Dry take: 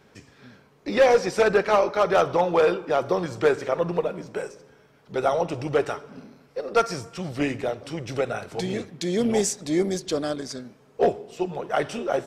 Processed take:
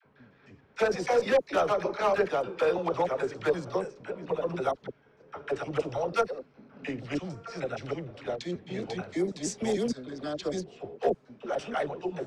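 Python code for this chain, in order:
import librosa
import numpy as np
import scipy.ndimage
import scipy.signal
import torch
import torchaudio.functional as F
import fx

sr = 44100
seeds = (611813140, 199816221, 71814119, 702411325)

y = fx.block_reorder(x, sr, ms=152.0, group=5)
y = fx.env_lowpass(y, sr, base_hz=2400.0, full_db=-16.5)
y = fx.dispersion(y, sr, late='lows', ms=52.0, hz=620.0)
y = y * 10.0 ** (-6.0 / 20.0)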